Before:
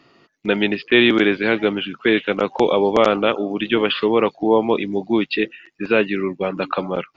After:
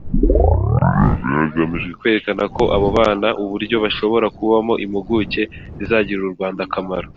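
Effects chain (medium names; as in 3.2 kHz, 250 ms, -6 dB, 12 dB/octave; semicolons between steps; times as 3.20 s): tape start-up on the opening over 2.07 s; wind noise 180 Hz -30 dBFS; trim +1 dB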